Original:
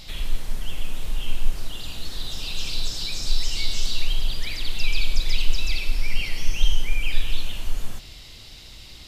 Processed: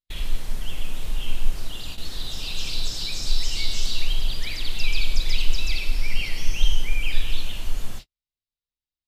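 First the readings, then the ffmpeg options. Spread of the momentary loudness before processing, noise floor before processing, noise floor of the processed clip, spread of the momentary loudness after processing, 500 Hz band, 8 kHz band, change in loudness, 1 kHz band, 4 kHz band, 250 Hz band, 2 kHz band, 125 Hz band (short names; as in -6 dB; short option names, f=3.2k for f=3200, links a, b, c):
11 LU, -43 dBFS, under -85 dBFS, 8 LU, 0.0 dB, n/a, 0.0 dB, 0.0 dB, 0.0 dB, 0.0 dB, 0.0 dB, 0.0 dB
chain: -af "agate=range=-55dB:threshold=-30dB:ratio=16:detection=peak"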